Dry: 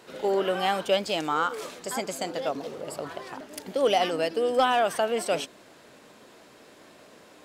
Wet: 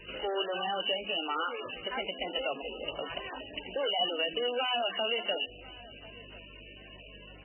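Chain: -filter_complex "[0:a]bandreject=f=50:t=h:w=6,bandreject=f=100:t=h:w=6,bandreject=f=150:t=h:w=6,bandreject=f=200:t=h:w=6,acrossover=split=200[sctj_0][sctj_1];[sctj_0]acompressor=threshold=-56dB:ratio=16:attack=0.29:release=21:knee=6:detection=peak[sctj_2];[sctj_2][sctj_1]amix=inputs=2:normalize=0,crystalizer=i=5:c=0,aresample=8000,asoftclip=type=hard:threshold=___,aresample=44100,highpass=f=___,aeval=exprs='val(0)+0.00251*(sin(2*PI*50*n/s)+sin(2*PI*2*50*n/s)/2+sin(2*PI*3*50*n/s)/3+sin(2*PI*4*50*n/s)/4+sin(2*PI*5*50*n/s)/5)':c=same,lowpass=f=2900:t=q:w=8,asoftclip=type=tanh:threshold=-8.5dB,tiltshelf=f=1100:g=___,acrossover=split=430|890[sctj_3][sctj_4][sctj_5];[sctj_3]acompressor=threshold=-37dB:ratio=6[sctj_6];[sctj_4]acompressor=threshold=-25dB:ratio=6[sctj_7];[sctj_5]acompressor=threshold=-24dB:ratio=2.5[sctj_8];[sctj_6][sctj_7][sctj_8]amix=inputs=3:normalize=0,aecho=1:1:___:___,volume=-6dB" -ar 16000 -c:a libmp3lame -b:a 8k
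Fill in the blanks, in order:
-21.5dB, 41, 3.5, 1041, 0.0794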